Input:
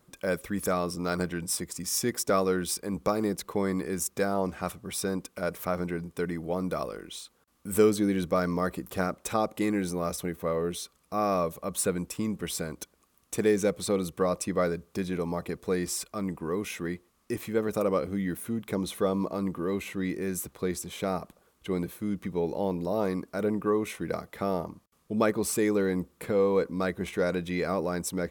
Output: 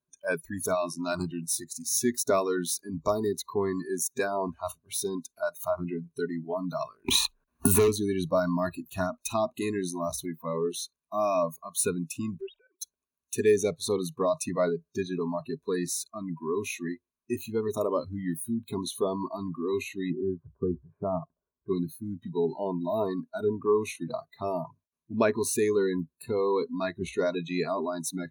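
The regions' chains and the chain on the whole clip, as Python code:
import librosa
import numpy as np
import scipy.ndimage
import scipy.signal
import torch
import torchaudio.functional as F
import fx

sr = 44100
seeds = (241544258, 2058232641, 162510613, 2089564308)

y = fx.chain(x, sr, fx.high_shelf(hz=10000.0, db=5.5),
    fx.leveller(passes=3),
    fx.band_squash(depth_pct=100), at=(7.08, 7.88))
y = fx.chain(y, sr, fx.sine_speech(),
    fx.lowpass(hz=2600.0, slope=6),
    fx.level_steps(step_db=12), at=(12.41, 12.81))
y = fx.chain(y, sr, fx.steep_lowpass(hz=1400.0, slope=36),
    fx.low_shelf(hz=220.0, db=3.5), at=(20.1, 21.69))
y = fx.noise_reduce_blind(y, sr, reduce_db=27)
y = fx.ripple_eq(y, sr, per_octave=1.5, db=11)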